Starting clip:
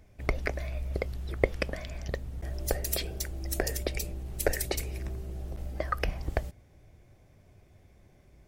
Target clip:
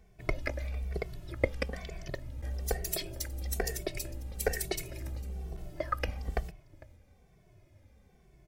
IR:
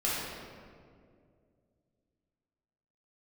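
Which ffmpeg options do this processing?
-filter_complex "[0:a]aecho=1:1:452:0.1,asplit=2[a][b];[b]adelay=2.2,afreqshift=-1.1[c];[a][c]amix=inputs=2:normalize=1"

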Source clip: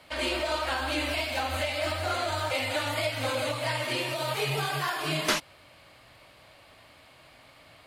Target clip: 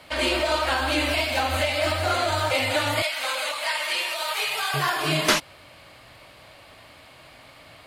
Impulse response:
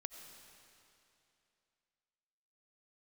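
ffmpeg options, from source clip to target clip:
-filter_complex "[0:a]asettb=1/sr,asplit=3[a][b][c];[a]atrim=end=3.024[d];[b]atrim=start=3.02:end=4.74,asetpts=PTS-STARTPTS,afade=t=in:d=0.004:c=qsin,afade=t=out:st=1.716:d=0.004:c=qsin,highpass=940[e];[c]atrim=start=4.736[f];[d][e]acrossfade=d=0.004:c1=hsin:c2=qsin[g];[g][f]acrossfade=d=0.004:c1=qsin:c2=hsin,volume=6dB"

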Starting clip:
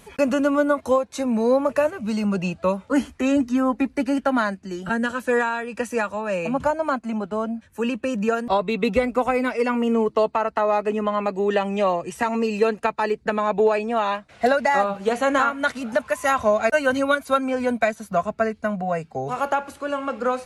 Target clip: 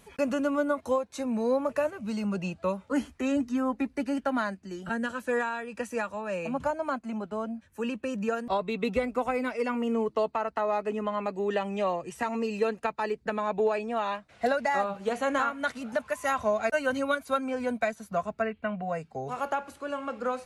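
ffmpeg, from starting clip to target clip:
-filter_complex "[0:a]asettb=1/sr,asplit=3[a][b][c];[a]atrim=end=18.424[d];[b]atrim=start=18.42:end=18.82,asetpts=PTS-STARTPTS,afade=t=in:d=0.004:c=qsin,afade=t=out:st=0.396:d=0.004:c=qsin,highshelf=f=4.1k:t=q:w=3:g=-12.5[e];[c]atrim=start=18.816[f];[d][e]acrossfade=d=0.004:c1=hsin:c2=qsin[g];[g][f]acrossfade=d=0.004:c1=qsin:c2=hsin,volume=-7.5dB"

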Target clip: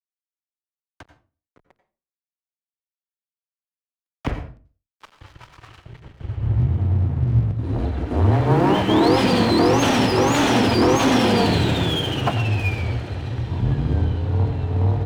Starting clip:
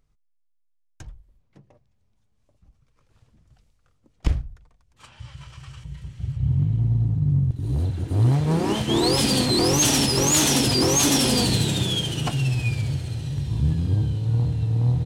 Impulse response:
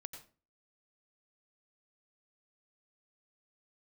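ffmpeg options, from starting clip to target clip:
-filter_complex "[0:a]highpass=f=76:w=0.5412,highpass=f=76:w=1.3066,aemphasis=mode=reproduction:type=75fm,asplit=2[a][b];[b]highpass=f=720:p=1,volume=17dB,asoftclip=type=tanh:threshold=-9.5dB[c];[a][c]amix=inputs=2:normalize=0,lowpass=f=2.4k:p=1,volume=-6dB,equalizer=f=6.2k:w=0.47:g=-4.5,aeval=exprs='sgn(val(0))*max(abs(val(0))-0.00891,0)':c=same,afreqshift=-23,asplit=2[d][e];[1:a]atrim=start_sample=2205[f];[e][f]afir=irnorm=-1:irlink=0,volume=9dB[g];[d][g]amix=inputs=2:normalize=0,volume=-5dB"

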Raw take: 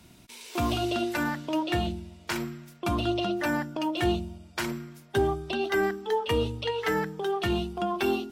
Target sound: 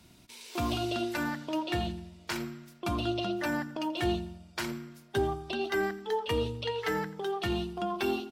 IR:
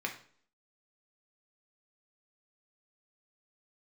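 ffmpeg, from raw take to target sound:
-filter_complex "[0:a]equalizer=f=4.5k:t=o:w=0.68:g=3,asplit=2[a][b];[b]adelay=85,lowpass=f=4.5k:p=1,volume=-17dB,asplit=2[c][d];[d]adelay=85,lowpass=f=4.5k:p=1,volume=0.5,asplit=2[e][f];[f]adelay=85,lowpass=f=4.5k:p=1,volume=0.5,asplit=2[g][h];[h]adelay=85,lowpass=f=4.5k:p=1,volume=0.5[i];[a][c][e][g][i]amix=inputs=5:normalize=0,volume=-4dB"

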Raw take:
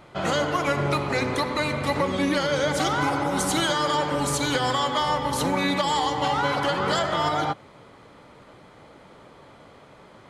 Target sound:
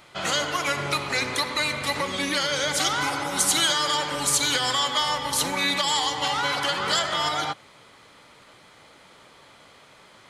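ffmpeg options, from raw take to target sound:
-af "tiltshelf=f=1.4k:g=-8"

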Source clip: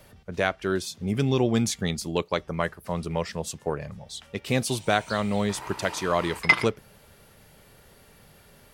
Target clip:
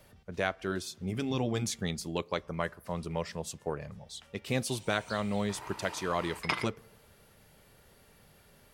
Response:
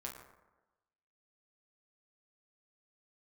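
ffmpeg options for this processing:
-filter_complex "[0:a]asplit=2[a][b];[1:a]atrim=start_sample=2205[c];[b][c]afir=irnorm=-1:irlink=0,volume=-20dB[d];[a][d]amix=inputs=2:normalize=0,afftfilt=real='re*lt(hypot(re,im),0.708)':imag='im*lt(hypot(re,im),0.708)':win_size=1024:overlap=0.75,volume=-6.5dB"

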